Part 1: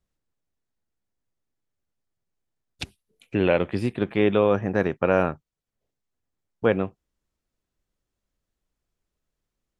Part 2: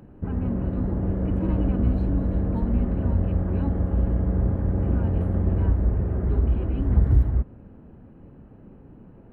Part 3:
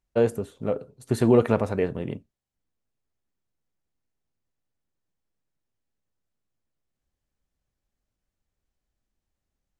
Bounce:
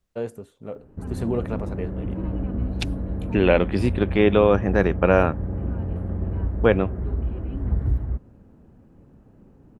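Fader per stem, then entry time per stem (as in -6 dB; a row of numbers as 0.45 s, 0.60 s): +3.0 dB, -4.5 dB, -8.5 dB; 0.00 s, 0.75 s, 0.00 s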